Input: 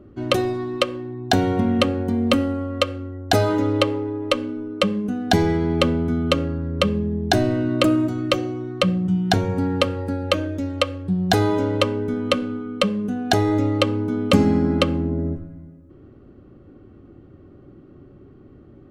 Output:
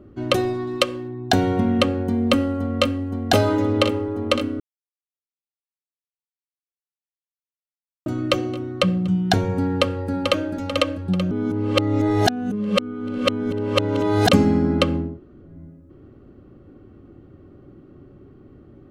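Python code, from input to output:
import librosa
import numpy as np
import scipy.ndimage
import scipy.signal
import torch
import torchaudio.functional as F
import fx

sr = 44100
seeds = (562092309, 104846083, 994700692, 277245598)

y = fx.high_shelf(x, sr, hz=4800.0, db=8.5, at=(0.67, 1.08))
y = fx.echo_throw(y, sr, start_s=2.07, length_s=0.96, ms=520, feedback_pct=85, wet_db=-7.5)
y = fx.echo_throw(y, sr, start_s=9.69, length_s=0.84, ms=440, feedback_pct=50, wet_db=-5.0)
y = fx.edit(y, sr, fx.silence(start_s=4.6, length_s=3.46),
    fx.reverse_span(start_s=11.31, length_s=2.98),
    fx.room_tone_fill(start_s=15.08, length_s=0.43, crossfade_s=0.24), tone=tone)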